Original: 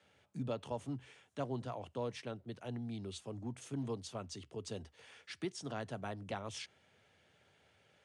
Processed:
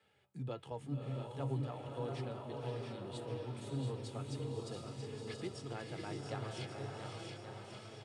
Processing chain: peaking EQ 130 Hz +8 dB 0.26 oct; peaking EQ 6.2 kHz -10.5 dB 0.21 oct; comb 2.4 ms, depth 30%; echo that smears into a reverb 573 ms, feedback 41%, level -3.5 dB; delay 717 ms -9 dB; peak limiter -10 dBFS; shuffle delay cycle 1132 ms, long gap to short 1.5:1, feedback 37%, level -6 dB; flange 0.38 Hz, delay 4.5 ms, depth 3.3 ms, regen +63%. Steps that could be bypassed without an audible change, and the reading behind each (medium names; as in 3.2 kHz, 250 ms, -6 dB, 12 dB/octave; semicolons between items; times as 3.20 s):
peak limiter -10 dBFS: peak at its input -23.0 dBFS